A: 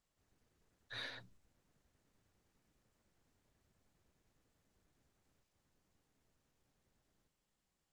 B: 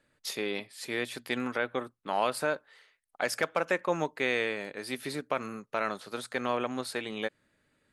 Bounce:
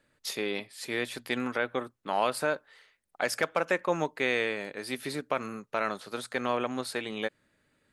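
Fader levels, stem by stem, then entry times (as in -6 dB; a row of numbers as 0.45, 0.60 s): -11.5, +1.0 dB; 0.00, 0.00 s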